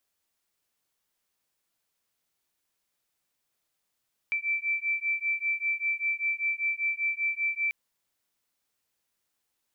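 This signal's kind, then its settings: beating tones 2330 Hz, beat 5.1 Hz, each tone -29.5 dBFS 3.39 s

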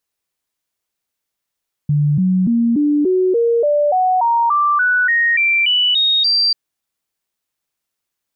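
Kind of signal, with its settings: stepped sine 147 Hz up, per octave 3, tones 16, 0.29 s, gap 0.00 s -11.5 dBFS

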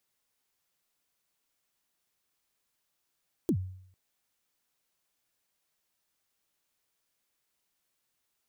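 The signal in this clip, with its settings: kick drum length 0.45 s, from 390 Hz, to 93 Hz, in 74 ms, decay 0.66 s, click on, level -21 dB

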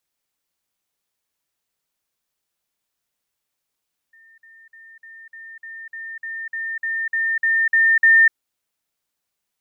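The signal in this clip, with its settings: level ladder 1810 Hz -48 dBFS, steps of 3 dB, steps 14, 0.25 s 0.05 s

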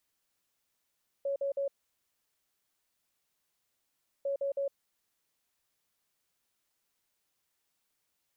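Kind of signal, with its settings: beep pattern sine 556 Hz, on 0.11 s, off 0.05 s, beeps 3, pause 2.57 s, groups 2, -29 dBFS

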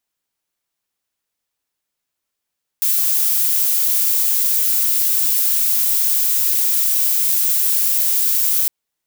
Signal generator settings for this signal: noise violet, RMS -16.5 dBFS 5.86 s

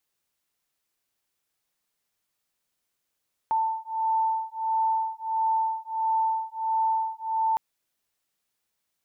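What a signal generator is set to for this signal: beating tones 889 Hz, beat 1.5 Hz, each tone -26.5 dBFS 4.06 s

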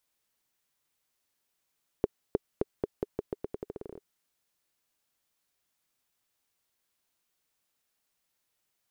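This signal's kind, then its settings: bouncing ball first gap 0.31 s, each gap 0.85, 410 Hz, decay 26 ms -11.5 dBFS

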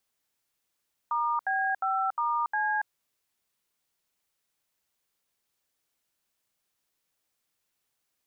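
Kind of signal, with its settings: DTMF "*B5*C", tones 0.282 s, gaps 74 ms, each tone -27.5 dBFS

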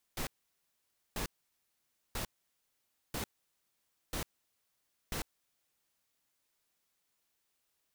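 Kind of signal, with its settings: noise bursts pink, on 0.10 s, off 0.89 s, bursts 6, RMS -37 dBFS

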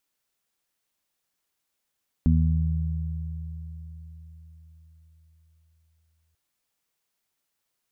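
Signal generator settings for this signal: additive tone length 4.09 s, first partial 80.1 Hz, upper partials -2/-2.5 dB, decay 4.84 s, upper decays 3.54/0.82 s, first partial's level -18 dB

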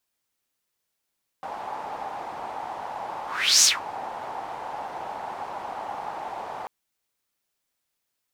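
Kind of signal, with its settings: whoosh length 5.24 s, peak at 2.21, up 0.41 s, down 0.17 s, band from 830 Hz, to 6400 Hz, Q 4.9, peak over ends 19 dB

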